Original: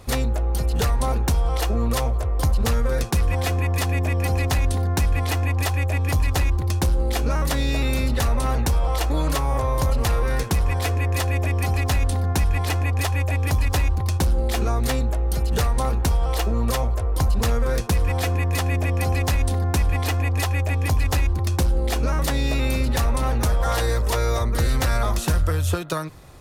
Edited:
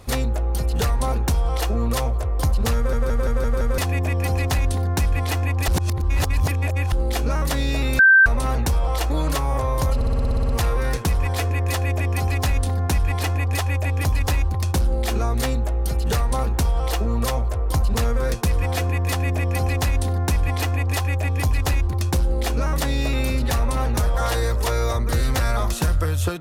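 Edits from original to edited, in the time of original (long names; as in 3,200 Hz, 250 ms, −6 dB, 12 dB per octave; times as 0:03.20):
0:02.76: stutter in place 0.17 s, 6 plays
0:05.68–0:06.92: reverse
0:07.99–0:08.26: beep over 1,560 Hz −8.5 dBFS
0:09.95: stutter 0.06 s, 10 plays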